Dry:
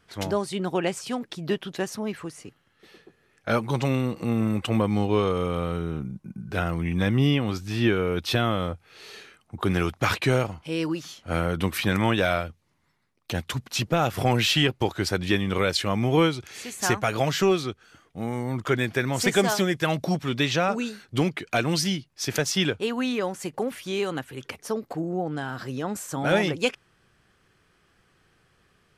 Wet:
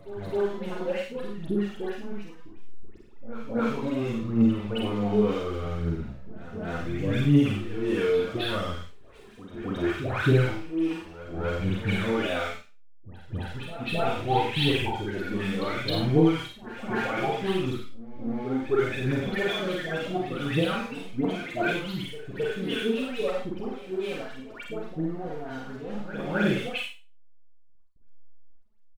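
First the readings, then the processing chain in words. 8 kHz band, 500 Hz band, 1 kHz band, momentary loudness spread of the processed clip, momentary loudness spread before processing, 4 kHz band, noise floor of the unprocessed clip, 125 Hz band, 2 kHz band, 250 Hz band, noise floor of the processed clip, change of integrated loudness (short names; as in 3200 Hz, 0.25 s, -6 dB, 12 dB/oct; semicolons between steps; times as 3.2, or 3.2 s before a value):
-16.5 dB, -2.0 dB, -4.0 dB, 14 LU, 10 LU, -5.5 dB, -66 dBFS, -2.5 dB, -3.5 dB, -1.0 dB, -47 dBFS, -2.5 dB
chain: steep low-pass 4100 Hz 96 dB/oct; upward compressor, threshold -33 dBFS; rotary speaker horn 5.5 Hz; whine 1300 Hz -58 dBFS; backlash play -32.5 dBFS; dispersion highs, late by 0.136 s, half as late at 1400 Hz; phaser 0.68 Hz, delay 4.8 ms, feedback 67%; doubler 49 ms -3.5 dB; on a send: reverse echo 0.266 s -13 dB; on the sum: Schroeder reverb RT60 0.31 s, combs from 31 ms, DRR 2 dB; gain -6.5 dB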